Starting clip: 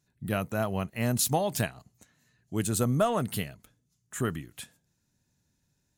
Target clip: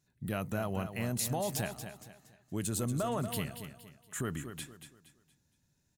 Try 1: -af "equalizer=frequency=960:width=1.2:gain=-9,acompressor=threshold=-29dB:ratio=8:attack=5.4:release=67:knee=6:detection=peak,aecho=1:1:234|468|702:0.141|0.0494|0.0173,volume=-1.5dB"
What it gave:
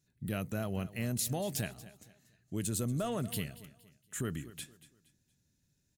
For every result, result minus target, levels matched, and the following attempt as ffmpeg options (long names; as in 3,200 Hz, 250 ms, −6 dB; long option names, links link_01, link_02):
echo-to-direct −7.5 dB; 1,000 Hz band −4.5 dB
-af "equalizer=frequency=960:width=1.2:gain=-9,acompressor=threshold=-29dB:ratio=8:attack=5.4:release=67:knee=6:detection=peak,aecho=1:1:234|468|702|936:0.335|0.117|0.041|0.0144,volume=-1.5dB"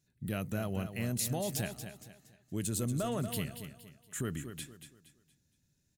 1,000 Hz band −4.5 dB
-af "acompressor=threshold=-29dB:ratio=8:attack=5.4:release=67:knee=6:detection=peak,aecho=1:1:234|468|702|936:0.335|0.117|0.041|0.0144,volume=-1.5dB"